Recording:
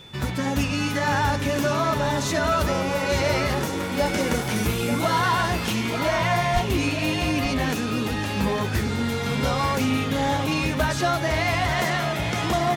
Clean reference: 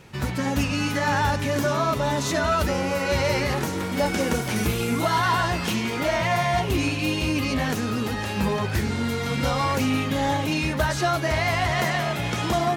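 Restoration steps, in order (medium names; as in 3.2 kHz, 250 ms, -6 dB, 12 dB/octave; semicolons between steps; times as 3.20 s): band-stop 3.5 kHz, Q 30; 6.53–6.65 s: high-pass 140 Hz 24 dB/octave; inverse comb 886 ms -9.5 dB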